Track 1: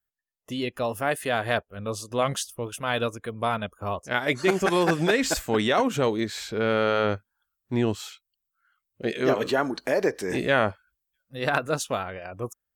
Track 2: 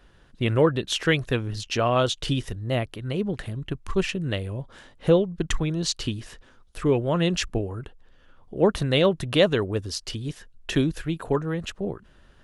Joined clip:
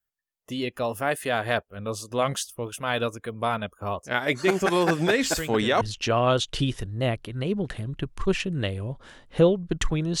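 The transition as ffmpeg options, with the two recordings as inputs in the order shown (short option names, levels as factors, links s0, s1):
-filter_complex "[1:a]asplit=2[s0][s1];[0:a]apad=whole_dur=10.2,atrim=end=10.2,atrim=end=5.812[s2];[s1]atrim=start=1.498:end=5.89[s3];[s0]atrim=start=0.77:end=1.5,asetpts=PTS-STARTPTS,volume=0.251,afade=t=in:d=0.004:c=hsin,afade=t=out:st=0.726:d=0.004:c=hsin,adelay=5080[s4];[s2][s3]acrossfade=d=0.004:c1=hsin:c2=hsin[s5];[s5][s4]amix=inputs=2:normalize=0"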